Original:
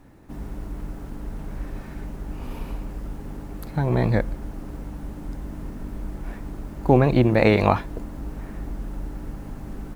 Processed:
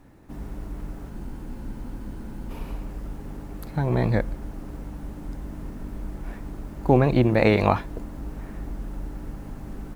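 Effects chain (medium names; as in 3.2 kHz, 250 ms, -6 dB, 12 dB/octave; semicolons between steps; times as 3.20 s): spectral freeze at 1.12 s, 1.37 s; trim -1.5 dB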